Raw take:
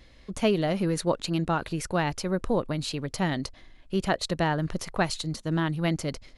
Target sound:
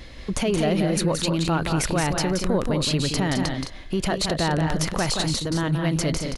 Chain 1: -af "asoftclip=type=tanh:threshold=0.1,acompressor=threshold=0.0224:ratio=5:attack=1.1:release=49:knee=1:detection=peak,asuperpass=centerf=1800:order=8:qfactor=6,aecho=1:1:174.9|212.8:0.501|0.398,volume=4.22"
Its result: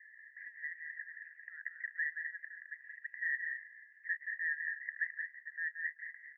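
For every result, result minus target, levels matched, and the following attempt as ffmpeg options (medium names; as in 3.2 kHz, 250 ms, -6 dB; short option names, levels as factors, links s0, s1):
2 kHz band +12.5 dB; saturation: distortion +14 dB
-af "asoftclip=type=tanh:threshold=0.1,acompressor=threshold=0.0224:ratio=5:attack=1.1:release=49:knee=1:detection=peak,aecho=1:1:174.9|212.8:0.501|0.398,volume=4.22"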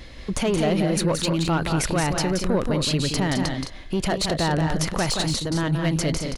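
saturation: distortion +14 dB
-af "asoftclip=type=tanh:threshold=0.299,acompressor=threshold=0.0224:ratio=5:attack=1.1:release=49:knee=1:detection=peak,aecho=1:1:174.9|212.8:0.501|0.398,volume=4.22"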